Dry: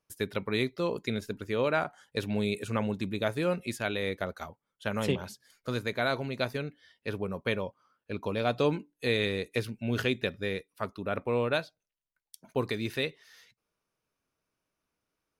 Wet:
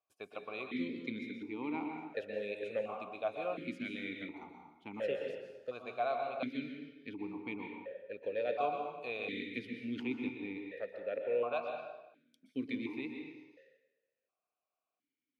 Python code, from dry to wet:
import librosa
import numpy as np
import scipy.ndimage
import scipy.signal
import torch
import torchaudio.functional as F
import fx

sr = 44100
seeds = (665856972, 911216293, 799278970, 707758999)

y = fx.rev_plate(x, sr, seeds[0], rt60_s=1.1, hf_ratio=0.8, predelay_ms=110, drr_db=2.5)
y = fx.vowel_held(y, sr, hz=1.4)
y = F.gain(torch.from_numpy(y), 2.0).numpy()